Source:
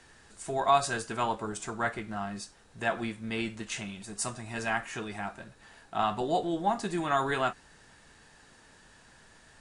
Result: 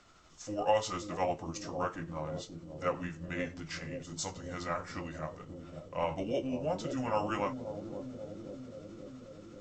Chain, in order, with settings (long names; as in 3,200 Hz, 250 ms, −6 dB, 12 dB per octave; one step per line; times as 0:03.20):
pitch shift by two crossfaded delay taps −4.5 semitones
on a send: bucket-brigade delay 535 ms, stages 2,048, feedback 74%, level −7 dB
on the sum: level −3.5 dB